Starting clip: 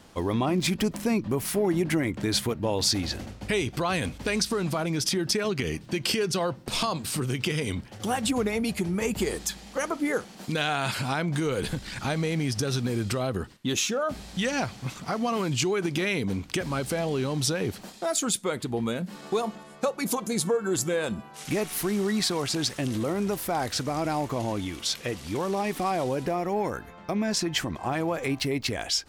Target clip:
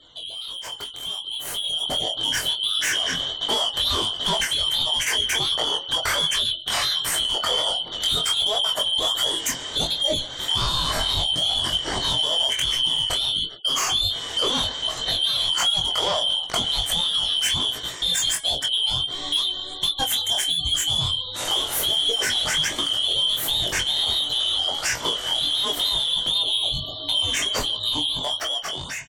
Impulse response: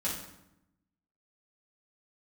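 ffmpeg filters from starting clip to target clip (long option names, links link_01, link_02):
-filter_complex "[0:a]afftfilt=real='real(if(lt(b,272),68*(eq(floor(b/68),0)*1+eq(floor(b/68),1)*3+eq(floor(b/68),2)*0+eq(floor(b/68),3)*2)+mod(b,68),b),0)':imag='imag(if(lt(b,272),68*(eq(floor(b/68),0)*1+eq(floor(b/68),1)*3+eq(floor(b/68),2)*0+eq(floor(b/68),3)*2)+mod(b,68),b),0)':win_size=2048:overlap=0.75,equalizer=frequency=200:width_type=o:width=0.33:gain=-8,equalizer=frequency=630:width_type=o:width=0.33:gain=4,equalizer=frequency=2500:width_type=o:width=0.33:gain=-6,equalizer=frequency=5000:width_type=o:width=0.33:gain=-8,equalizer=frequency=10000:width_type=o:width=0.33:gain=-4,asoftclip=type=tanh:threshold=-27dB,flanger=delay=17:depth=5.7:speed=1.4,lowshelf=frequency=490:gain=3,bandreject=frequency=275.8:width_type=h:width=4,bandreject=frequency=551.6:width_type=h:width=4,bandreject=frequency=827.4:width_type=h:width=4,bandreject=frequency=1103.2:width_type=h:width=4,bandreject=frequency=1379:width_type=h:width=4,bandreject=frequency=1654.8:width_type=h:width=4,bandreject=frequency=1930.6:width_type=h:width=4,bandreject=frequency=2206.4:width_type=h:width=4,bandreject=frequency=2482.2:width_type=h:width=4,bandreject=frequency=2758:width_type=h:width=4,bandreject=frequency=3033.8:width_type=h:width=4,bandreject=frequency=3309.6:width_type=h:width=4,bandreject=frequency=3585.4:width_type=h:width=4,bandreject=frequency=3861.2:width_type=h:width=4,bandreject=frequency=4137:width_type=h:width=4,bandreject=frequency=4412.8:width_type=h:width=4,bandreject=frequency=4688.6:width_type=h:width=4,bandreject=frequency=4964.4:width_type=h:width=4,bandreject=frequency=5240.2:width_type=h:width=4,bandreject=frequency=5516:width_type=h:width=4,bandreject=frequency=5791.8:width_type=h:width=4,bandreject=frequency=6067.6:width_type=h:width=4,bandreject=frequency=6343.4:width_type=h:width=4,bandreject=frequency=6619.2:width_type=h:width=4,bandreject=frequency=6895:width_type=h:width=4,bandreject=frequency=7170.8:width_type=h:width=4,bandreject=frequency=7446.6:width_type=h:width=4,bandreject=frequency=7722.4:width_type=h:width=4,bandreject=frequency=7998.2:width_type=h:width=4,bandreject=frequency=8274:width_type=h:width=4,bandreject=frequency=8549.8:width_type=h:width=4,bandreject=frequency=8825.6:width_type=h:width=4,bandreject=frequency=9101.4:width_type=h:width=4,bandreject=frequency=9377.2:width_type=h:width=4,bandreject=frequency=9653:width_type=h:width=4,bandreject=frequency=9928.8:width_type=h:width=4,bandreject=frequency=10204.6:width_type=h:width=4,acompressor=threshold=-41dB:ratio=2.5,asplit=2[link_01][link_02];[link_02]adelay=24,volume=-8dB[link_03];[link_01][link_03]amix=inputs=2:normalize=0,asplit=2[link_04][link_05];[link_05]adelay=139.9,volume=-22dB,highshelf=frequency=4000:gain=-3.15[link_06];[link_04][link_06]amix=inputs=2:normalize=0,afftfilt=real='re*gte(hypot(re,im),0.000891)':imag='im*gte(hypot(re,im),0.000891)':win_size=1024:overlap=0.75,dynaudnorm=framelen=740:gausssize=5:maxgain=12dB,volume=5.5dB"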